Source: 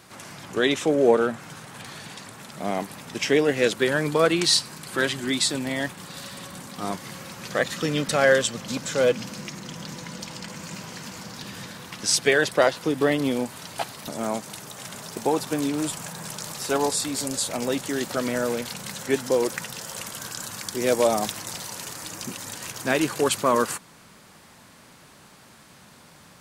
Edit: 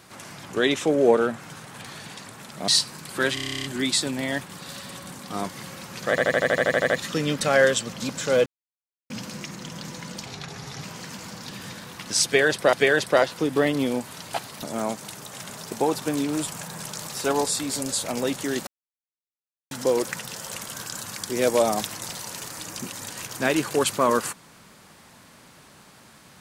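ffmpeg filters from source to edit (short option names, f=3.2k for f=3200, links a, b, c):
-filter_complex "[0:a]asplit=28[a][b][c][d][e][f][g][h][i][j][k][l][m][n][o][p][q][r][s][t][u][v][w][x][y][z][aa][ab];[a]atrim=end=2.682[ac];[b]atrim=start=4.458:end=5.152[ad];[c]atrim=start=5.118:end=5.152[ae];[d]atrim=start=5.118:end=5.152[af];[e]atrim=start=5.118:end=5.152[ag];[f]atrim=start=5.118:end=5.152[ah];[g]atrim=start=5.118:end=5.152[ai];[h]atrim=start=5.118:end=5.152[aj];[i]atrim=start=5.118:end=5.152[ak];[j]atrim=start=5.118:end=5.152[al];[k]atrim=start=5.118:end=5.152[am];[l]atrim=start=5.118:end=7.662[an];[m]atrim=start=7.578:end=7.662[ao];[n]atrim=start=7.578:end=7.662[ap];[o]atrim=start=7.578:end=7.662[aq];[p]atrim=start=7.578:end=7.662[ar];[q]atrim=start=7.578:end=7.662[as];[r]atrim=start=7.578:end=7.662[at];[s]atrim=start=7.578:end=7.662[au];[t]atrim=start=7.578:end=7.662[av];[u]atrim=start=7.578:end=7.662[aw];[v]atrim=start=7.578:end=9.14,asetpts=PTS-STARTPTS,afade=t=out:st=1.558:d=0.004:c=hsin,apad=pad_dur=0.64[ax];[w]atrim=start=9.14:end=10.304,asetpts=PTS-STARTPTS,afade=t=in:d=0.004:c=hsin[ay];[x]atrim=start=10.3:end=10.77,asetpts=PTS-STARTPTS,asetrate=35721,aresample=44100[az];[y]atrim=start=10.766:end=12.662[ba];[z]atrim=start=12.178:end=18.12,asetpts=PTS-STARTPTS,afade=t=out:st=5.938:d=0.004:c=hsin[bb];[aa]atrim=start=18.12:end=19.16,asetpts=PTS-STARTPTS,volume=0[bc];[ab]atrim=start=19.16,asetpts=PTS-STARTPTS,afade=t=in:d=0.004:c=hsin[bd];[ac][ad]acrossfade=d=0.004:c1=hsin:c2=hsin[be];[be][ae]acrossfade=d=0.004:c1=hsin:c2=hsin[bf];[bf][af]acrossfade=d=0.004:c1=hsin:c2=hsin[bg];[bg][ag]acrossfade=d=0.004:c1=hsin:c2=hsin[bh];[bh][ah]acrossfade=d=0.004:c1=hsin:c2=hsin[bi];[bi][ai]acrossfade=d=0.004:c1=hsin:c2=hsin[bj];[bj][aj]acrossfade=d=0.004:c1=hsin:c2=hsin[bk];[bk][ak]acrossfade=d=0.004:c1=hsin:c2=hsin[bl];[bl][al]acrossfade=d=0.004:c1=hsin:c2=hsin[bm];[bm][am]acrossfade=d=0.004:c1=hsin:c2=hsin[bn];[bn][an]acrossfade=d=0.004:c1=hsin:c2=hsin[bo];[bo][ao]acrossfade=d=0.004:c1=hsin:c2=hsin[bp];[bp][ap]acrossfade=d=0.004:c1=hsin:c2=hsin[bq];[bq][aq]acrossfade=d=0.004:c1=hsin:c2=hsin[br];[br][ar]acrossfade=d=0.004:c1=hsin:c2=hsin[bs];[bs][as]acrossfade=d=0.004:c1=hsin:c2=hsin[bt];[bt][at]acrossfade=d=0.004:c1=hsin:c2=hsin[bu];[bu][au]acrossfade=d=0.004:c1=hsin:c2=hsin[bv];[bv][av]acrossfade=d=0.004:c1=hsin:c2=hsin[bw];[bw][aw]acrossfade=d=0.004:c1=hsin:c2=hsin[bx];[ax][ay]concat=n=2:v=0:a=1[by];[bx][by]acrossfade=d=0.004:c1=hsin:c2=hsin[bz];[bz][az]acrossfade=d=0.004:c1=hsin:c2=hsin[ca];[ca][ba]acrossfade=d=0.004:c1=hsin:c2=hsin[cb];[bb][bc][bd]concat=n=3:v=0:a=1[cc];[cb][cc]acrossfade=d=0.004:c1=hsin:c2=hsin"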